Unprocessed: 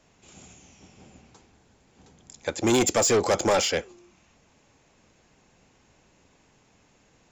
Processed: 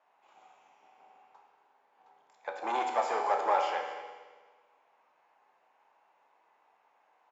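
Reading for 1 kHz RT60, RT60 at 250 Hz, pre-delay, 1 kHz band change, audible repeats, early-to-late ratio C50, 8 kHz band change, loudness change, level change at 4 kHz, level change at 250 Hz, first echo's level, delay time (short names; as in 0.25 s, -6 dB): 1.5 s, 1.5 s, 14 ms, +1.5 dB, 1, 4.0 dB, -27.5 dB, -8.5 dB, -16.5 dB, -21.0 dB, -15.0 dB, 0.23 s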